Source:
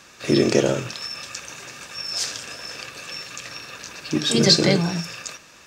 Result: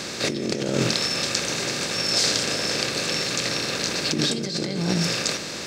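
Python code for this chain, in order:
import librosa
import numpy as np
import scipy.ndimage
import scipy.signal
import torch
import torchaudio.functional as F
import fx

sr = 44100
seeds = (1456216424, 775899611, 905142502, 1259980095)

y = fx.bin_compress(x, sr, power=0.6)
y = fx.dynamic_eq(y, sr, hz=200.0, q=1.5, threshold_db=-29.0, ratio=4.0, max_db=4)
y = fx.over_compress(y, sr, threshold_db=-21.0, ratio=-1.0)
y = y * 10.0 ** (-2.0 / 20.0)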